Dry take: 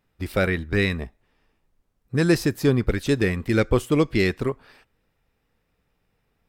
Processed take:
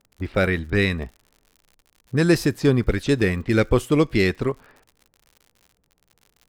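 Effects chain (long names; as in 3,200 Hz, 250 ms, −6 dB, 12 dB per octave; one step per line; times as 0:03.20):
low-pass that shuts in the quiet parts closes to 720 Hz, open at −19 dBFS
surface crackle 80 per second −41 dBFS
level +1.5 dB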